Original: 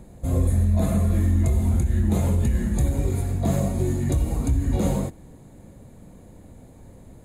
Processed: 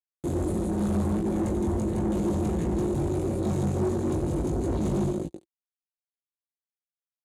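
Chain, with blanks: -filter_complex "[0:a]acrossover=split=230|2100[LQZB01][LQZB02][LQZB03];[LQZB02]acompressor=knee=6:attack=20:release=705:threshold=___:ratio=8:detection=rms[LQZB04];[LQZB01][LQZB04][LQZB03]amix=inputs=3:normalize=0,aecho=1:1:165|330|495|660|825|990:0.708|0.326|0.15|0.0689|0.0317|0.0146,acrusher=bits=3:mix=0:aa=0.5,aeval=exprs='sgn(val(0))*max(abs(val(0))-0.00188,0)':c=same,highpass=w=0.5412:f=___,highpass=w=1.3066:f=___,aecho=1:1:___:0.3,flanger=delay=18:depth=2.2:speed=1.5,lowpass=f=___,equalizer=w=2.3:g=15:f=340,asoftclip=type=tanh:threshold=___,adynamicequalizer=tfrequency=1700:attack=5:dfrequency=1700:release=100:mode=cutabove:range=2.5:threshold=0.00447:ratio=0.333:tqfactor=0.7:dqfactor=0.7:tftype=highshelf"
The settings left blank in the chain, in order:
-43dB, 68, 68, 5.5, 9700, -21dB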